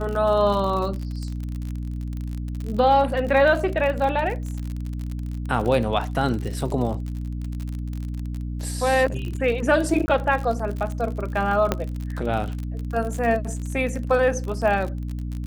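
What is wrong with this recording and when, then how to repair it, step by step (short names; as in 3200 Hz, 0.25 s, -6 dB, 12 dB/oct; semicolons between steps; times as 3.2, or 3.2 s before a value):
crackle 47/s -28 dBFS
hum 60 Hz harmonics 5 -29 dBFS
5.65 gap 3.1 ms
10.06–10.08 gap 20 ms
11.72 pop -7 dBFS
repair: de-click; de-hum 60 Hz, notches 5; interpolate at 5.65, 3.1 ms; interpolate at 10.06, 20 ms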